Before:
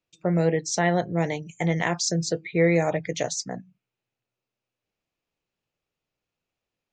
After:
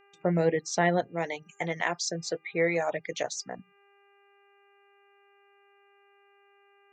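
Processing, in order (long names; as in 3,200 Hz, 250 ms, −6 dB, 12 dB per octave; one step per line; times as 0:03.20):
low-pass filter 3,500 Hz 6 dB per octave
low-shelf EQ 180 Hz −7 dB
noise gate with hold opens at −49 dBFS
0:01.07–0:03.59: low-shelf EQ 360 Hz −10.5 dB
hum with harmonics 400 Hz, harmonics 7, −61 dBFS −3 dB per octave
reverb reduction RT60 0.5 s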